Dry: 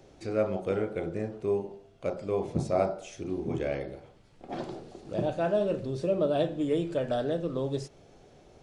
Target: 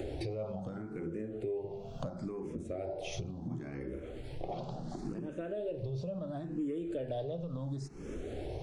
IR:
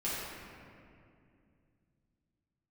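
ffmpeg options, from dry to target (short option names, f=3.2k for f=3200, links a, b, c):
-filter_complex "[0:a]asplit=2[a][b];[b]asoftclip=type=tanh:threshold=-27.5dB,volume=-11dB[c];[a][c]amix=inputs=2:normalize=0,lowshelf=f=390:g=10.5,alimiter=level_in=1.5dB:limit=-24dB:level=0:latency=1:release=433,volume=-1.5dB,bandreject=f=50:t=h:w=6,bandreject=f=100:t=h:w=6,bandreject=f=150:t=h:w=6,bandreject=f=200:t=h:w=6,acompressor=threshold=-48dB:ratio=6,asplit=2[d][e];[e]afreqshift=0.72[f];[d][f]amix=inputs=2:normalize=1,volume=14dB"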